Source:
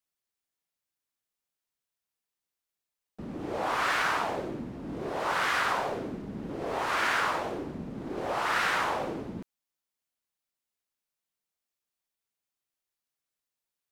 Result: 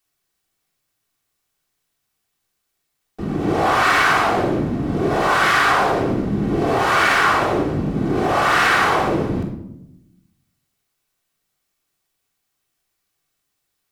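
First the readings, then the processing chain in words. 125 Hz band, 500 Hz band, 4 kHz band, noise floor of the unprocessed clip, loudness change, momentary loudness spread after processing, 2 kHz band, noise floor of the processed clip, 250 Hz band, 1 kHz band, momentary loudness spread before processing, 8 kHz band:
+18.5 dB, +13.5 dB, +11.5 dB, below −85 dBFS, +12.5 dB, 8 LU, +12.5 dB, −75 dBFS, +16.0 dB, +12.5 dB, 12 LU, +11.0 dB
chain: rectangular room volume 2,200 cubic metres, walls furnished, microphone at 3.5 metres
in parallel at +1.5 dB: brickwall limiter −22 dBFS, peak gain reduction 10.5 dB
on the sum: level +4.5 dB

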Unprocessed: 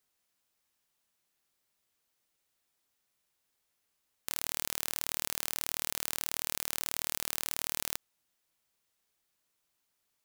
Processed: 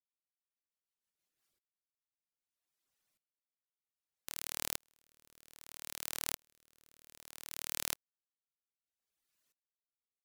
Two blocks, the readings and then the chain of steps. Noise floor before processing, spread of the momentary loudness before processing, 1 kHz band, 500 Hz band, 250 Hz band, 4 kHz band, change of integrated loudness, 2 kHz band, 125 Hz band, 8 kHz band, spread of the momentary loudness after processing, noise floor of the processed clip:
−80 dBFS, 2 LU, −8.0 dB, −7.0 dB, −7.0 dB, −6.5 dB, −6.0 dB, −7.0 dB, −7.0 dB, −7.0 dB, 16 LU, below −85 dBFS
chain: reverb reduction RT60 1.2 s
rotating-speaker cabinet horn 6.3 Hz, later 0.6 Hz, at 0:01.10
tremolo with a ramp in dB swelling 0.63 Hz, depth 40 dB
level +5 dB

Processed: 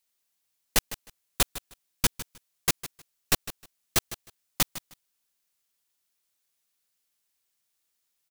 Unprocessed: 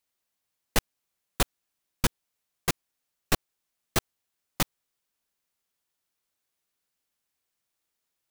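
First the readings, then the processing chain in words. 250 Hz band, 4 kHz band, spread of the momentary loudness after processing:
−2.5 dB, +3.5 dB, 15 LU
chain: high-shelf EQ 2,300 Hz +8.5 dB
on a send: repeating echo 155 ms, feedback 18%, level −14.5 dB
on the sum: level −3 dB

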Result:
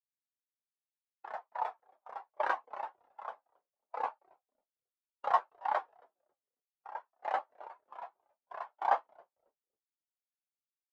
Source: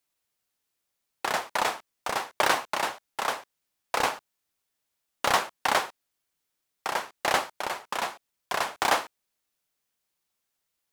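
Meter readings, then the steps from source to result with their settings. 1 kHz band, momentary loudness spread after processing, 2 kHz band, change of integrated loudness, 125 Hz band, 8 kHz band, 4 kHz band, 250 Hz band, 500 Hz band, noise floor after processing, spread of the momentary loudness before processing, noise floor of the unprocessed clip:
−6.5 dB, 19 LU, −15.0 dB, −8.5 dB, below −25 dB, below −35 dB, −26.5 dB, below −20 dB, −9.5 dB, below −85 dBFS, 10 LU, −81 dBFS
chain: tape wow and flutter 24 cents
echo with shifted repeats 273 ms, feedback 42%, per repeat −120 Hz, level −12.5 dB
every bin expanded away from the loudest bin 2.5 to 1
level −7 dB

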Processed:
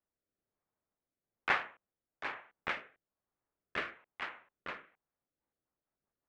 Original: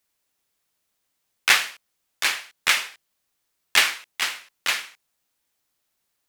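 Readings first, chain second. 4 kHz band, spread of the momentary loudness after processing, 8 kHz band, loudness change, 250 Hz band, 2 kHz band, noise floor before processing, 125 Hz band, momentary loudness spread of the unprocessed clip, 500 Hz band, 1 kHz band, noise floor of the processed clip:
−25.0 dB, 13 LU, below −35 dB, −17.0 dB, −4.0 dB, −15.0 dB, −76 dBFS, can't be measured, 9 LU, −5.5 dB, −9.0 dB, below −85 dBFS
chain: adaptive Wiener filter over 9 samples
low-pass filter 1,200 Hz 12 dB per octave
rotating-speaker cabinet horn 1.1 Hz, later 5.5 Hz, at 0:04.89
level −3.5 dB

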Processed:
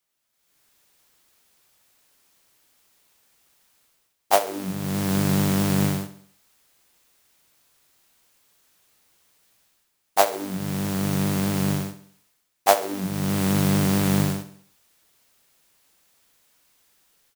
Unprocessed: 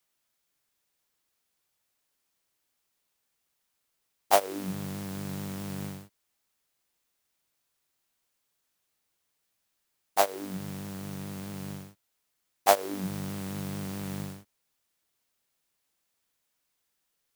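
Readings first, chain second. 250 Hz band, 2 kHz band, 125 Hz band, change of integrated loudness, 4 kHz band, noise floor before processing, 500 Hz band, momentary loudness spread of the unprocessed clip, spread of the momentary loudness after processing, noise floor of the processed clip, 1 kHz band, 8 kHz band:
+13.0 dB, +7.5 dB, +14.0 dB, +8.5 dB, +8.0 dB, −79 dBFS, +5.5 dB, 15 LU, 9 LU, −73 dBFS, +5.0 dB, +8.0 dB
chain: automatic gain control gain up to 16 dB
repeating echo 67 ms, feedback 48%, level −14 dB
level −1 dB

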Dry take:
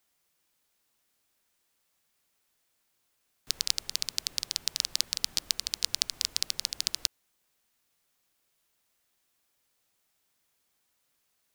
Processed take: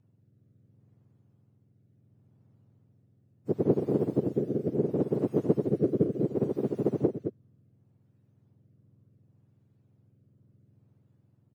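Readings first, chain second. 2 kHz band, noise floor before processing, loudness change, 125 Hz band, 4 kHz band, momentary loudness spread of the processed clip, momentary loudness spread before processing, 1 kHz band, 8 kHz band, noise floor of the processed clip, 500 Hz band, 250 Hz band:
below −15 dB, −76 dBFS, +1.0 dB, +27.5 dB, below −35 dB, 4 LU, 3 LU, +7.0 dB, below −35 dB, −68 dBFS, +32.5 dB, can't be measured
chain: frequency axis turned over on the octave scale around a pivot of 1,400 Hz
single-tap delay 218 ms −7.5 dB
rotating-speaker cabinet horn 0.7 Hz

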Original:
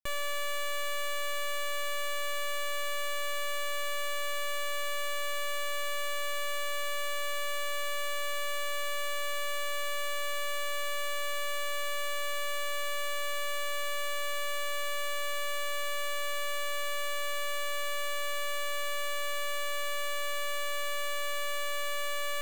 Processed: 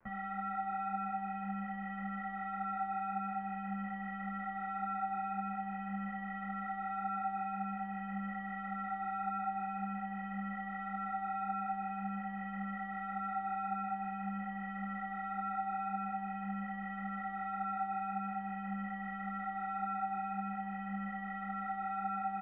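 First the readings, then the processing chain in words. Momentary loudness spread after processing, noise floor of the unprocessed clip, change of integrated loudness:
3 LU, −31 dBFS, −5.5 dB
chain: rippled gain that drifts along the octave scale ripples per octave 1.6, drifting +0.47 Hz, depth 9 dB
surface crackle 240 per second −44 dBFS
double-tracking delay 25 ms −8.5 dB
single-sideband voice off tune −380 Hz 220–2,100 Hz
string-ensemble chorus

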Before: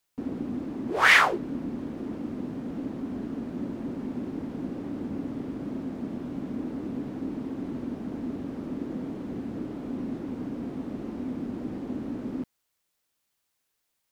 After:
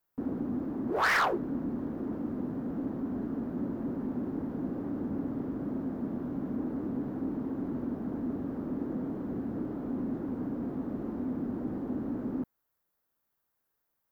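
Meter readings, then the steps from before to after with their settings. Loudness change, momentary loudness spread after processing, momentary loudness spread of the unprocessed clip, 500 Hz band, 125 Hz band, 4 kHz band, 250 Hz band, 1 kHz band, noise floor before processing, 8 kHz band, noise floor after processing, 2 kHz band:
−3.5 dB, 3 LU, 3 LU, −1.0 dB, −0.5 dB, below −10 dB, −0.5 dB, −4.0 dB, −78 dBFS, can't be measured, −81 dBFS, −9.0 dB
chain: flat-topped bell 4,600 Hz −12.5 dB 2.5 octaves
soft clipping −21.5 dBFS, distortion −13 dB

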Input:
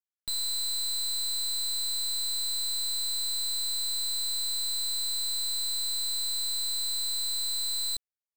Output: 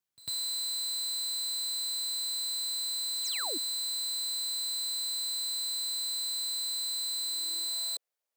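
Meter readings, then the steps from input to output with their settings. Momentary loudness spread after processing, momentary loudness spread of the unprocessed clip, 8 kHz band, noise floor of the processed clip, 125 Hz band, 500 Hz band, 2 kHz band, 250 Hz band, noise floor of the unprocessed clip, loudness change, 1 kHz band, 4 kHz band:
0 LU, 0 LU, −2.5 dB, below −85 dBFS, can't be measured, +4.0 dB, +1.5 dB, +2.5 dB, below −85 dBFS, −2.5 dB, +2.0 dB, −2.0 dB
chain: brickwall limiter −39 dBFS, peak gain reduction 9 dB
sound drawn into the spectrogram fall, 0:03.24–0:03.58, 260–7,900 Hz −46 dBFS
high-pass filter sweep 110 Hz → 530 Hz, 0:07.10–0:07.78
on a send: backwards echo 99 ms −20 dB
on the sum: level +6 dB

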